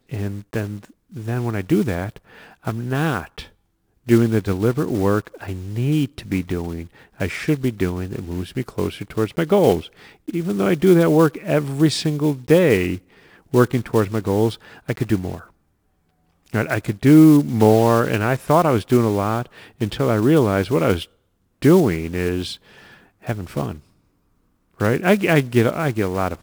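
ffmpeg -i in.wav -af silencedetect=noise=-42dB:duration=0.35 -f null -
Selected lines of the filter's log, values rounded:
silence_start: 3.49
silence_end: 4.07 | silence_duration: 0.58
silence_start: 15.47
silence_end: 16.46 | silence_duration: 1.00
silence_start: 21.05
silence_end: 21.62 | silence_duration: 0.57
silence_start: 23.80
silence_end: 24.79 | silence_duration: 0.99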